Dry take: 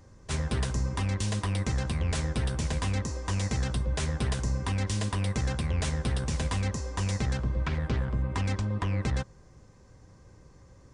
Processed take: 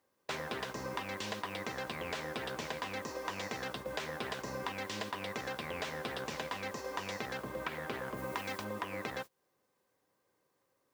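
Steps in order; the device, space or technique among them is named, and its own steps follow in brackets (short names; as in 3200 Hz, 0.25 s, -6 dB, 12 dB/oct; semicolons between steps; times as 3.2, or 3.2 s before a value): baby monitor (BPF 400–3800 Hz; compressor 6:1, threshold -46 dBFS, peak gain reduction 14 dB; white noise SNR 19 dB; gate -52 dBFS, range -25 dB); 8.16–8.63 high shelf 8100 Hz -> 5200 Hz +7 dB; gain +9.5 dB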